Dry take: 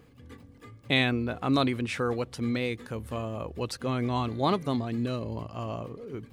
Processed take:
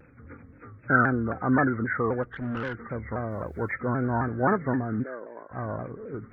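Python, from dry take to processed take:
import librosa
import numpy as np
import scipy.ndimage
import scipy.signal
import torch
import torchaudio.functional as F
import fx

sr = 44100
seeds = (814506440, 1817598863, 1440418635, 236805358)

y = fx.freq_compress(x, sr, knee_hz=1200.0, ratio=4.0)
y = fx.tube_stage(y, sr, drive_db=27.0, bias=0.7, at=(2.23, 2.75))
y = fx.quant_dither(y, sr, seeds[0], bits=12, dither='none', at=(3.3, 3.72), fade=0.02)
y = fx.ladder_highpass(y, sr, hz=320.0, resonance_pct=20, at=(5.02, 5.5), fade=0.02)
y = fx.vibrato_shape(y, sr, shape='saw_down', rate_hz=3.8, depth_cents=160.0)
y = F.gain(torch.from_numpy(y), 2.0).numpy()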